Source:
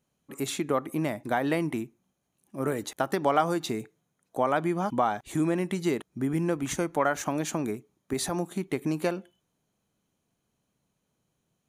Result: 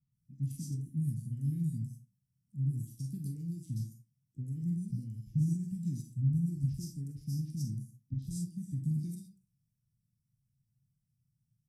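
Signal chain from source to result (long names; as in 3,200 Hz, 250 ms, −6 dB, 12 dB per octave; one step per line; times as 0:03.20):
octave-band graphic EQ 125/250/500/1,000/4,000/8,000 Hz +9/+8/+11/−6/−12/−9 dB
on a send at −1 dB: convolution reverb RT60 0.35 s, pre-delay 4 ms
on the sum: formants moved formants −3 semitones
elliptic band-stop filter 130–5,100 Hz, stop band 80 dB
multiband delay without the direct sound lows, highs 120 ms, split 3,500 Hz
level −4.5 dB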